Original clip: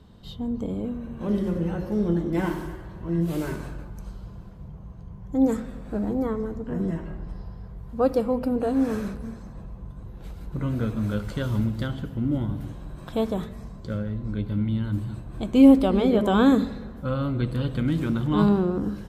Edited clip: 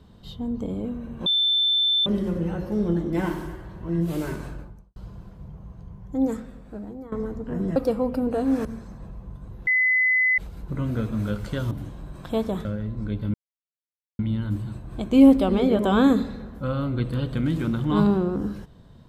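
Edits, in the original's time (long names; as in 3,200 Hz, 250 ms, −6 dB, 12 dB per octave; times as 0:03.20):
0:01.26: insert tone 3,540 Hz −18 dBFS 0.80 s
0:03.72–0:04.16: fade out and dull
0:05.03–0:06.32: fade out, to −16.5 dB
0:06.96–0:08.05: remove
0:08.94–0:09.20: remove
0:10.22: insert tone 2,020 Hz −17 dBFS 0.71 s
0:11.55–0:12.54: remove
0:13.48–0:13.92: remove
0:14.61: splice in silence 0.85 s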